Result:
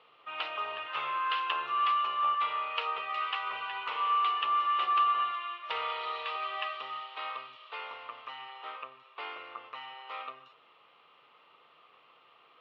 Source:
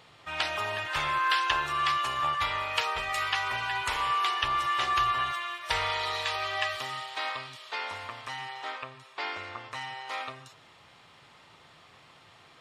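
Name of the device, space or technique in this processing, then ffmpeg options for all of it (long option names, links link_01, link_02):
phone earpiece: -af "highpass=340,equalizer=frequency=470:width_type=q:width=4:gain=7,equalizer=frequency=1200:width_type=q:width=4:gain=10,equalizer=frequency=1700:width_type=q:width=4:gain=-5,equalizer=frequency=2800:width_type=q:width=4:gain=7,lowpass=frequency=3500:width=0.5412,lowpass=frequency=3500:width=1.3066,lowshelf=frequency=200:gain=3.5,volume=-8.5dB"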